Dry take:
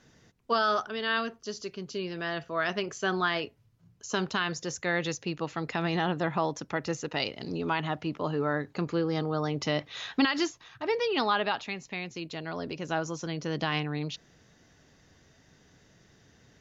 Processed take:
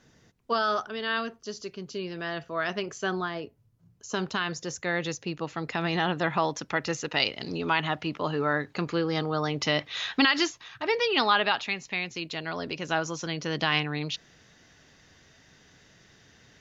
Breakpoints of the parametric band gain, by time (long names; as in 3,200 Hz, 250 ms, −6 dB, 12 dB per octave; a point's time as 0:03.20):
parametric band 2,800 Hz 2.9 octaves
0:03.06 −0.5 dB
0:03.36 −11.5 dB
0:04.29 0 dB
0:05.52 0 dB
0:06.27 +7 dB